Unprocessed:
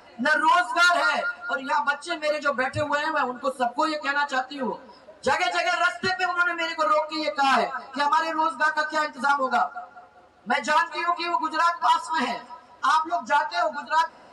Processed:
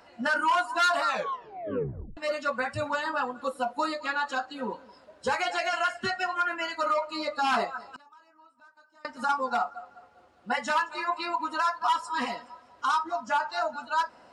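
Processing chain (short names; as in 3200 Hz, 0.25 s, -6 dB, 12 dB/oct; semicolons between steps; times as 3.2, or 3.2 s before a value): 1.04 tape stop 1.13 s; 7.89–9.05 flipped gate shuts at -26 dBFS, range -29 dB; gain -5 dB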